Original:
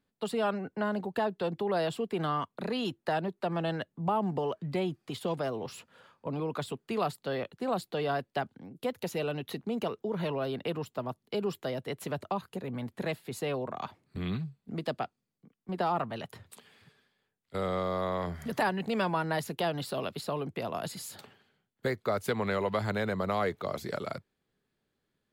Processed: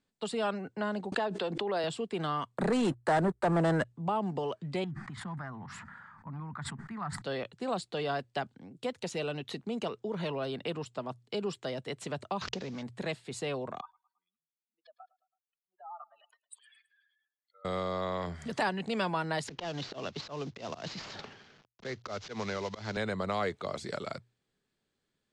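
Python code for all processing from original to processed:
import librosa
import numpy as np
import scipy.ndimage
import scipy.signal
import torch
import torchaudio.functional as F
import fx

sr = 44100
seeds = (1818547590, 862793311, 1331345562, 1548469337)

y = fx.chain(x, sr, fx.highpass(hz=240.0, slope=12),
    fx.high_shelf(hz=6000.0, db=-6.5),
    fx.pre_swell(db_per_s=29.0), at=(1.12, 1.84))
y = fx.chain(y, sr, fx.leveller(passes=3),
    fx.band_shelf(hz=3900.0, db=-12.0, octaves=1.7), at=(2.57, 3.85))
y = fx.chain(y, sr, fx.curve_eq(hz=(200.0, 490.0, 840.0, 1900.0, 2700.0), db=(0, -26, -4, 1, -23)),
    fx.sustainer(db_per_s=21.0), at=(4.84, 7.22))
y = fx.chain(y, sr, fx.cvsd(bps=32000),
    fx.pre_swell(db_per_s=28.0), at=(12.41, 12.83))
y = fx.chain(y, sr, fx.spec_expand(power=3.1),
    fx.highpass(hz=1200.0, slope=24),
    fx.echo_feedback(ms=109, feedback_pct=50, wet_db=-22.5), at=(13.81, 17.65))
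y = fx.chain(y, sr, fx.cvsd(bps=32000),
    fx.auto_swell(attack_ms=141.0),
    fx.band_squash(depth_pct=70), at=(19.48, 22.97))
y = scipy.signal.sosfilt(scipy.signal.cheby1(4, 1.0, 8600.0, 'lowpass', fs=sr, output='sos'), y)
y = fx.high_shelf(y, sr, hz=3800.0, db=6.5)
y = fx.hum_notches(y, sr, base_hz=60, count=2)
y = y * librosa.db_to_amplitude(-1.5)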